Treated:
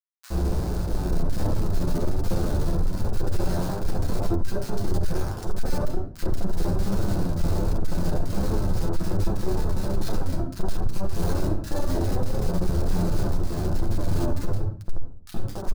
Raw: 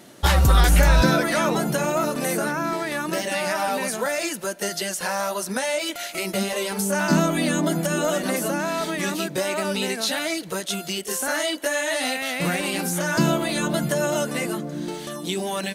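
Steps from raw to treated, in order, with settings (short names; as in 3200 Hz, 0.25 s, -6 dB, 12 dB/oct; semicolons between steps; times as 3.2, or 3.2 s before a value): 14.28–14.8 weighting filter A; compressor 20:1, threshold -23 dBFS, peak gain reduction 12.5 dB; Schmitt trigger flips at -21 dBFS; band shelf 2500 Hz -9 dB 1.1 oct; reverb RT60 0.45 s, pre-delay 6 ms, DRR -3 dB; flange 1.3 Hz, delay 9.1 ms, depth 2.8 ms, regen +38%; soft clip -16.5 dBFS, distortion -15 dB; bands offset in time highs, lows 70 ms, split 1500 Hz; gain +3 dB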